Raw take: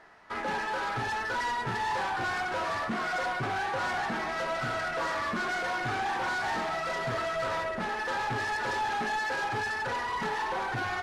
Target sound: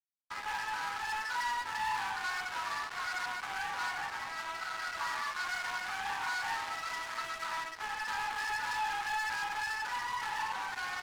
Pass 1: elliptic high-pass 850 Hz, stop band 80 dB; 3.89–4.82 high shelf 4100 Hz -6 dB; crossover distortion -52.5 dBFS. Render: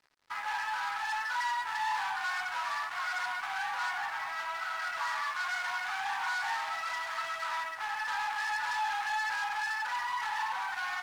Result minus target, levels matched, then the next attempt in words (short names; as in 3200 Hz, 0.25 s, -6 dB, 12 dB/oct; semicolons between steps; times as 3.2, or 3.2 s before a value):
crossover distortion: distortion -12 dB
elliptic high-pass 850 Hz, stop band 80 dB; 3.89–4.82 high shelf 4100 Hz -6 dB; crossover distortion -41 dBFS